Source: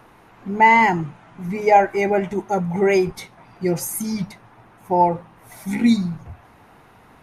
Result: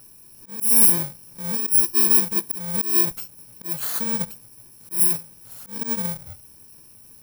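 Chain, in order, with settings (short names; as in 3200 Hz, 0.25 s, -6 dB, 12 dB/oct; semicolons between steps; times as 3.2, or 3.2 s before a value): FFT order left unsorted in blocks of 64 samples; auto swell 0.25 s; high shelf 8600 Hz +9.5 dB; gain -4.5 dB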